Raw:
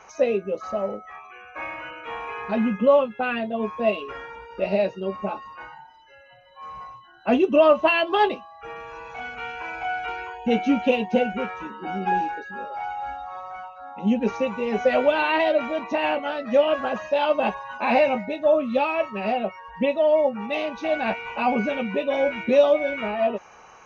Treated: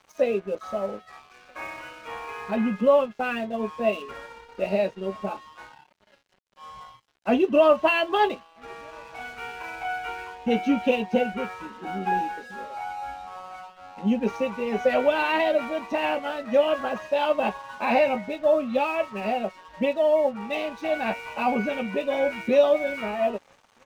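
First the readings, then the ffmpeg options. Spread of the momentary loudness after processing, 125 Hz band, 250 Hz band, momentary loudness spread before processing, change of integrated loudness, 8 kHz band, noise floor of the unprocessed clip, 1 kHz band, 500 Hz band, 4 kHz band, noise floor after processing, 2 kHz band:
18 LU, -2.0 dB, -2.0 dB, 17 LU, -1.5 dB, n/a, -49 dBFS, -2.0 dB, -2.0 dB, -2.0 dB, -60 dBFS, -2.0 dB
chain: -filter_complex "[0:a]asplit=2[a][b];[b]adelay=1283,volume=-29dB,highshelf=f=4k:g=-28.9[c];[a][c]amix=inputs=2:normalize=0,aeval=exprs='sgn(val(0))*max(abs(val(0))-0.00501,0)':c=same,volume=-1.5dB"

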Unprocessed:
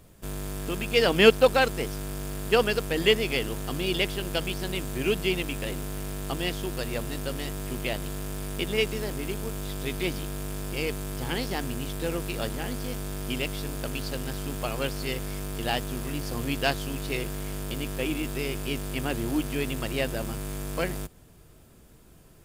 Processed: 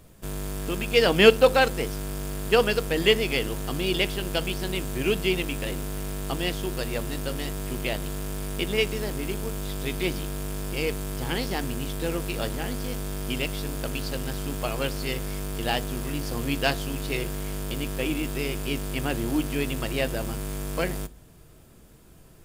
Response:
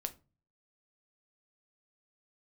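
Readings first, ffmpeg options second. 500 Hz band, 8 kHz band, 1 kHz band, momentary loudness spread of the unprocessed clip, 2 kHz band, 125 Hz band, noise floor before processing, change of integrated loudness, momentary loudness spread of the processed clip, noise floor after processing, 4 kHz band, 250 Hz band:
+1.5 dB, +1.5 dB, +1.5 dB, 11 LU, +1.5 dB, +1.5 dB, -53 dBFS, +1.5 dB, 11 LU, -51 dBFS, +1.5 dB, +1.5 dB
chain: -filter_complex "[0:a]asplit=2[a][b];[1:a]atrim=start_sample=2205[c];[b][c]afir=irnorm=-1:irlink=0,volume=-2dB[d];[a][d]amix=inputs=2:normalize=0,volume=-3dB"

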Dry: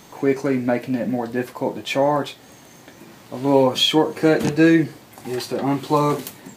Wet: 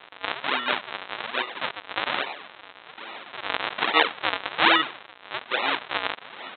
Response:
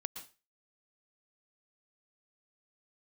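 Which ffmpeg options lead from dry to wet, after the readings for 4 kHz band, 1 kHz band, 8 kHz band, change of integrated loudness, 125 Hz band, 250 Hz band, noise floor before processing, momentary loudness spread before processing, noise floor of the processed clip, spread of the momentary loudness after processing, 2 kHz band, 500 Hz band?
-1.5 dB, -1.5 dB, under -40 dB, -5.5 dB, -24.5 dB, -18.5 dB, -47 dBFS, 12 LU, -50 dBFS, 18 LU, +4.0 dB, -14.0 dB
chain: -af "aeval=exprs='val(0)+0.5*0.0335*sgn(val(0))':c=same,aresample=8000,acrusher=samples=24:mix=1:aa=0.000001:lfo=1:lforange=38.4:lforate=1.2,aresample=44100,highpass=970,volume=3.5dB"

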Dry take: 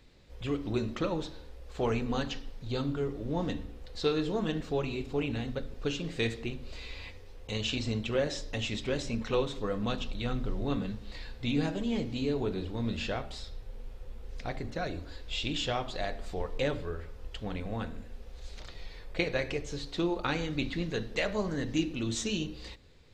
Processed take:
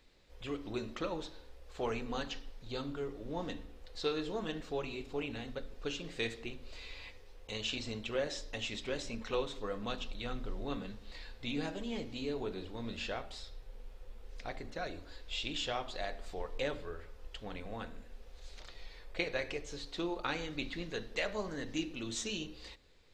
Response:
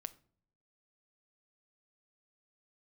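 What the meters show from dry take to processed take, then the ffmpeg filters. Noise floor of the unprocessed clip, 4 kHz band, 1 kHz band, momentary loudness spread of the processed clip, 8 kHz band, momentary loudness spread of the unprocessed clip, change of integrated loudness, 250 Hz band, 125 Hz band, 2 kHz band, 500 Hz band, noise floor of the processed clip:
-48 dBFS, -3.5 dB, -4.0 dB, 14 LU, -3.5 dB, 15 LU, -6.0 dB, -8.5 dB, -11.5 dB, -3.5 dB, -5.5 dB, -54 dBFS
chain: -af "equalizer=f=110:w=0.46:g=-9,volume=-3.5dB"

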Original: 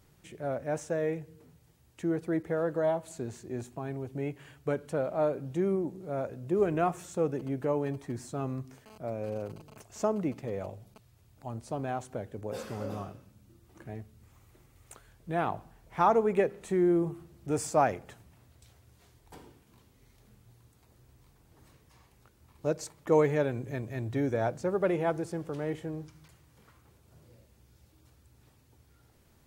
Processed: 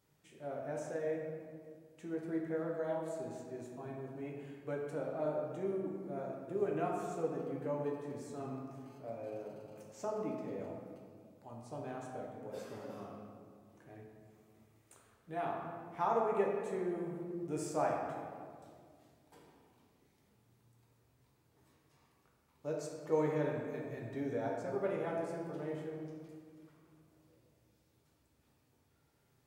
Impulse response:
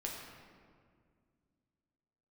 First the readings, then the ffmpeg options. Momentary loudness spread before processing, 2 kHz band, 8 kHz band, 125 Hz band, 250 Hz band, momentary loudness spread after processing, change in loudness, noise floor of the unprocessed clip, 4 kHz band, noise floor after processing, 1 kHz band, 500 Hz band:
16 LU, -8.0 dB, -9.5 dB, -10.0 dB, -8.0 dB, 17 LU, -7.5 dB, -64 dBFS, -9.0 dB, -73 dBFS, -7.5 dB, -7.0 dB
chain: -filter_complex "[0:a]highpass=f=190:p=1[a];[1:a]atrim=start_sample=2205[b];[a][b]afir=irnorm=-1:irlink=0,volume=-8dB"

